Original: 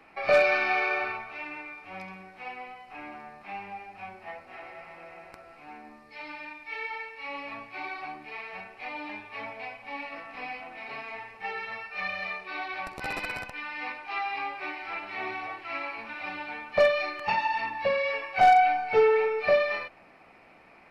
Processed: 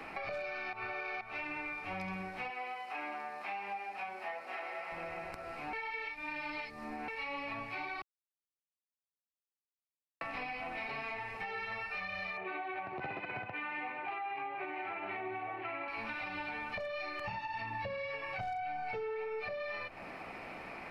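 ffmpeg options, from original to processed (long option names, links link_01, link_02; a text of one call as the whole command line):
ffmpeg -i in.wav -filter_complex "[0:a]asettb=1/sr,asplit=3[link_01][link_02][link_03];[link_01]atrim=end=2.504[link_04];[link_02]atrim=start=2.5:end=4.92,asetpts=PTS-STARTPTS,afade=type=in:duration=0.004:curve=qsin,afade=type=out:start_time=2.416:duration=0.004:curve=qsin,highpass=410[link_05];[link_03]atrim=start=4.916[link_06];[link_04][link_05]acrossfade=duration=0.004:curve1=hsin:curve2=qsin[link_07];[link_07][link_06]acrossfade=duration=0.004:curve1=qsin:curve2=hsin,asettb=1/sr,asplit=3[link_08][link_09][link_10];[link_08]atrim=end=12.374[link_11];[link_09]atrim=start=12.37:end=15.88,asetpts=PTS-STARTPTS,afade=type=in:duration=0.004:curve=qsin,afade=type=out:start_time=3.506:duration=0.004:curve=qsin,highpass=frequency=110:width=0.5412,highpass=frequency=110:width=1.3066,equalizer=frequency=110:width_type=q:width=4:gain=5,equalizer=frequency=370:width_type=q:width=4:gain=9,equalizer=frequency=720:width_type=q:width=4:gain=7,lowpass=frequency=2900:width=0.5412,lowpass=frequency=2900:width=1.3066[link_12];[link_10]atrim=start=15.876[link_13];[link_11][link_12]acrossfade=duration=0.004:curve1=hsin:curve2=qsin[link_14];[link_14][link_13]acrossfade=duration=0.004:curve1=qsin:curve2=hsin,asettb=1/sr,asplit=3[link_15][link_16][link_17];[link_15]atrim=end=17.244[link_18];[link_16]atrim=start=17.24:end=18.82,asetpts=PTS-STARTPTS,afade=type=in:duration=0.004:curve=qsin,afade=type=out:start_time=1.576:duration=0.004:curve=qsin,equalizer=frequency=110:width=0.98:gain=9[link_19];[link_17]atrim=start=18.816[link_20];[link_18][link_19]acrossfade=duration=0.004:curve1=hsin:curve2=qsin[link_21];[link_21][link_20]acrossfade=duration=0.004:curve1=qsin:curve2=hsin,asplit=7[link_22][link_23][link_24][link_25][link_26][link_27][link_28];[link_22]atrim=end=0.732[link_29];[link_23]atrim=start=0.728:end=1.212,asetpts=PTS-STARTPTS,areverse[link_30];[link_24]atrim=start=1.208:end=5.732[link_31];[link_25]atrim=start=5.728:end=7.082,asetpts=PTS-STARTPTS,areverse[link_32];[link_26]atrim=start=7.078:end=8.02,asetpts=PTS-STARTPTS,afade=type=out:start_time=0.938:duration=0.004:curve=hsin[link_33];[link_27]atrim=start=8.02:end=10.21,asetpts=PTS-STARTPTS,volume=0[link_34];[link_28]atrim=start=10.21,asetpts=PTS-STARTPTS,afade=type=in:duration=0.004:curve=hsin[link_35];[link_29][link_30]acrossfade=duration=0.004:curve1=hsin:curve2=hsin[link_36];[link_36][link_31]acrossfade=duration=0.004:curve1=hsin:curve2=hsin[link_37];[link_37][link_32]acrossfade=duration=0.004:curve1=hsin:curve2=hsin[link_38];[link_33][link_34][link_35]concat=n=3:v=0:a=1[link_39];[link_38][link_39]acrossfade=duration=0.004:curve1=hsin:curve2=hsin,acompressor=threshold=-35dB:ratio=6,alimiter=level_in=8dB:limit=-24dB:level=0:latency=1:release=191,volume=-8dB,acrossover=split=150[link_40][link_41];[link_41]acompressor=threshold=-52dB:ratio=2.5[link_42];[link_40][link_42]amix=inputs=2:normalize=0,volume=10dB" out.wav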